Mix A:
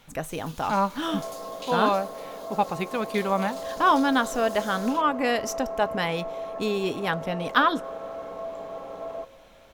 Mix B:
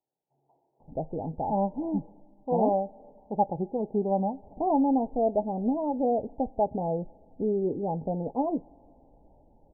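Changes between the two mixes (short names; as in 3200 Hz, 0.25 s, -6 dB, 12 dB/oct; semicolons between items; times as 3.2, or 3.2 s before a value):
speech: entry +0.80 s; second sound: muted; master: add steep low-pass 870 Hz 96 dB/oct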